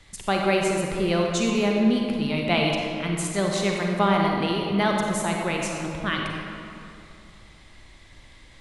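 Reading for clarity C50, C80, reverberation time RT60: 0.5 dB, 2.0 dB, 2.7 s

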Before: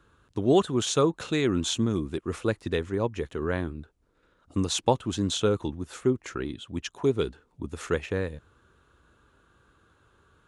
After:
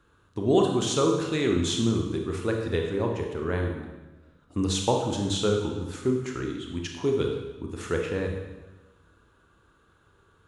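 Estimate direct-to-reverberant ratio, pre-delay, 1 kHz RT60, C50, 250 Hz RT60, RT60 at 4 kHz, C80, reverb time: 1.5 dB, 24 ms, 1.1 s, 4.0 dB, 1.3 s, 1.0 s, 6.5 dB, 1.2 s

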